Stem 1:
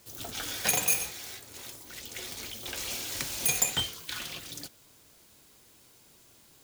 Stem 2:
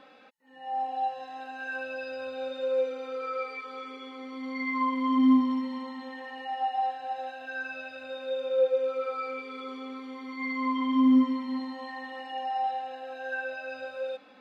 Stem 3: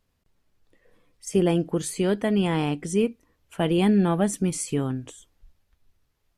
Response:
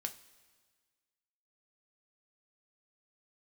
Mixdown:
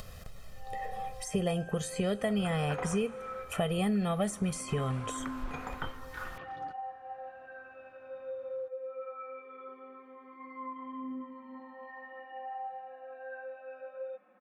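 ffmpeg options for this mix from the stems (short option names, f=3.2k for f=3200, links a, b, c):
-filter_complex "[0:a]lowpass=f=1.3k:t=q:w=3.4,adelay=2050,volume=-5.5dB[a];[1:a]aecho=1:1:5.5:0.77,alimiter=limit=-23.5dB:level=0:latency=1:release=491,lowpass=f=2k:w=0.5412,lowpass=f=2k:w=1.3066,volume=-9.5dB[b];[2:a]aecho=1:1:1.6:0.93,acompressor=mode=upward:threshold=-24dB:ratio=2.5,volume=-5dB,asplit=2[c][d];[d]volume=-5dB[e];[3:a]atrim=start_sample=2205[f];[e][f]afir=irnorm=-1:irlink=0[g];[a][b][c][g]amix=inputs=4:normalize=0,acrossover=split=2300|7400[h][i][j];[h]acompressor=threshold=-28dB:ratio=4[k];[i]acompressor=threshold=-46dB:ratio=4[l];[j]acompressor=threshold=-47dB:ratio=4[m];[k][l][m]amix=inputs=3:normalize=0"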